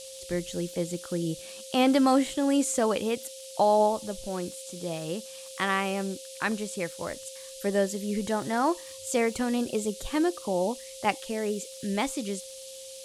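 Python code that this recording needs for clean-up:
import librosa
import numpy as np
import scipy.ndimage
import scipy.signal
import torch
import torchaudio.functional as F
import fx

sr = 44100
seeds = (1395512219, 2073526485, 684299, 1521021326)

y = fx.fix_declick_ar(x, sr, threshold=6.5)
y = fx.notch(y, sr, hz=530.0, q=30.0)
y = fx.noise_reduce(y, sr, print_start_s=12.53, print_end_s=13.03, reduce_db=28.0)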